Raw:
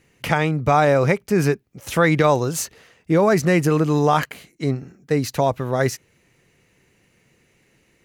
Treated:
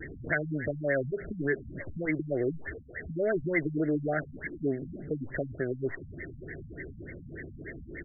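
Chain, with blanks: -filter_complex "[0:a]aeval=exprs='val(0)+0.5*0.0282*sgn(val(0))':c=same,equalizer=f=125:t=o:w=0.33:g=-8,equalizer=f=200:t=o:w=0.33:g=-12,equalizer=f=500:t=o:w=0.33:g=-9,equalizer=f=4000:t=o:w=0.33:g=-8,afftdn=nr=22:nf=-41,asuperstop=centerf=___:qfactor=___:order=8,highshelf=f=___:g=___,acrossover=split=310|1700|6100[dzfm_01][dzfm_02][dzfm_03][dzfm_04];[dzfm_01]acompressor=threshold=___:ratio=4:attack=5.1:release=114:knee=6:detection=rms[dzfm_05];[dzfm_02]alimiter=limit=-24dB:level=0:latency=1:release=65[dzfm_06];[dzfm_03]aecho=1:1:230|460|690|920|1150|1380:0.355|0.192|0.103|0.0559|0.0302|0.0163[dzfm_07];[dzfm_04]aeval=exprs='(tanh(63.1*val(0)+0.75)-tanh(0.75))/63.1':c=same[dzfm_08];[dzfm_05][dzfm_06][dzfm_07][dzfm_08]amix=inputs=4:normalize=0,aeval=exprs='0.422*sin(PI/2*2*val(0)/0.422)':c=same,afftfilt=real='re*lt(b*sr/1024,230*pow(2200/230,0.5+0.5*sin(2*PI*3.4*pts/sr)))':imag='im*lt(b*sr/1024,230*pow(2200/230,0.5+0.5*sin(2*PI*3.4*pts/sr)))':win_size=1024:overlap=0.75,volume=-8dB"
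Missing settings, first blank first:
1000, 1.1, 2100, 8.5, -40dB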